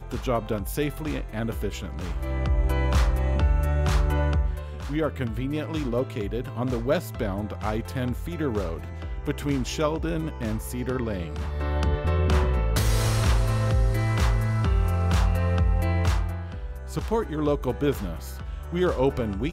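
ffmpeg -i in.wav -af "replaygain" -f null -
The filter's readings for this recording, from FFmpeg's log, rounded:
track_gain = +9.9 dB
track_peak = 0.201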